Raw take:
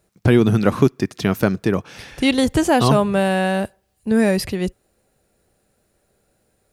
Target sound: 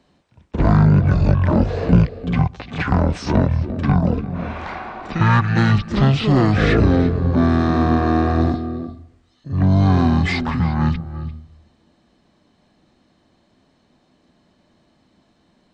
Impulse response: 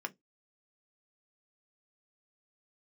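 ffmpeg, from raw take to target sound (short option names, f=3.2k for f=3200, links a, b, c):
-filter_complex "[0:a]asplit=2[a][b];[b]asetrate=66075,aresample=44100,atempo=0.66742,volume=-10dB[c];[a][c]amix=inputs=2:normalize=0,acrossover=split=400|3000[d][e][f];[e]acompressor=threshold=-27dB:ratio=3[g];[d][g][f]amix=inputs=3:normalize=0,asplit=2[h][i];[i]highpass=f=720:p=1,volume=18dB,asoftclip=type=tanh:threshold=-2dB[j];[h][j]amix=inputs=2:normalize=0,lowpass=f=2.6k:p=1,volume=-6dB,asplit=2[k][l];[1:a]atrim=start_sample=2205,asetrate=22932,aresample=44100,adelay=148[m];[l][m]afir=irnorm=-1:irlink=0,volume=-15.5dB[n];[k][n]amix=inputs=2:normalize=0,asetrate=18846,aresample=44100,volume=-1dB"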